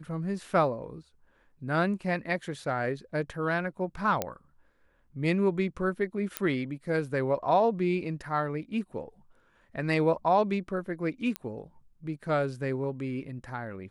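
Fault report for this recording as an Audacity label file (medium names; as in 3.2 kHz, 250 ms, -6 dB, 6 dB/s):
4.220000	4.220000	pop -12 dBFS
6.370000	6.370000	pop -11 dBFS
11.360000	11.360000	pop -16 dBFS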